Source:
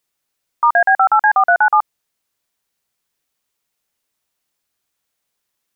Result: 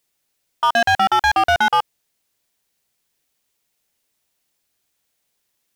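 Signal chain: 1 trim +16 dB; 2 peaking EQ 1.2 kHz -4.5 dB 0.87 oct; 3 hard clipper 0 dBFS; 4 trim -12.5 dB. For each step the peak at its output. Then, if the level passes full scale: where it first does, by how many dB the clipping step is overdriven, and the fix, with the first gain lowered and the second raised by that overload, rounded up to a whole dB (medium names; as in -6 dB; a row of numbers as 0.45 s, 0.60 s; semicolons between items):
+11.0 dBFS, +9.5 dBFS, 0.0 dBFS, -12.5 dBFS; step 1, 9.5 dB; step 1 +6 dB, step 4 -2.5 dB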